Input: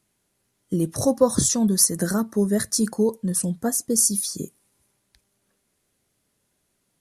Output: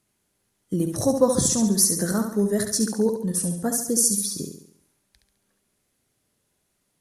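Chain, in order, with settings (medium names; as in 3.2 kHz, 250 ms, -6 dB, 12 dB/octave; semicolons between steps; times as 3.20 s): flutter echo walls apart 11.9 m, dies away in 0.64 s; trim -1.5 dB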